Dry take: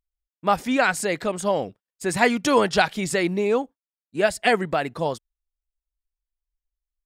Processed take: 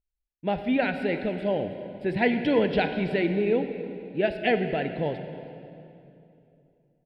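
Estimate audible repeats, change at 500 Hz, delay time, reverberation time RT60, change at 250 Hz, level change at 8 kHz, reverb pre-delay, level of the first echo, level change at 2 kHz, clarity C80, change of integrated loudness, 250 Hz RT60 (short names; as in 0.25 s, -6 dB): 1, -2.5 dB, 0.322 s, 2.8 s, -0.5 dB, under -35 dB, 31 ms, -19.0 dB, -6.0 dB, 9.0 dB, -4.0 dB, 3.4 s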